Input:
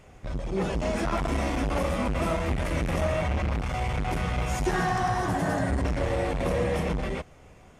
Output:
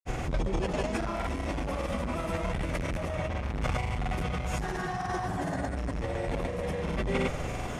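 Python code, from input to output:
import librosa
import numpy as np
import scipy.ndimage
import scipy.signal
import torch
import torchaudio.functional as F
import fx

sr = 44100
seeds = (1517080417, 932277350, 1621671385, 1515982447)

y = fx.over_compress(x, sr, threshold_db=-38.0, ratio=-1.0)
y = fx.granulator(y, sr, seeds[0], grain_ms=100.0, per_s=20.0, spray_ms=100.0, spread_st=0)
y = F.gain(torch.from_numpy(y), 8.5).numpy()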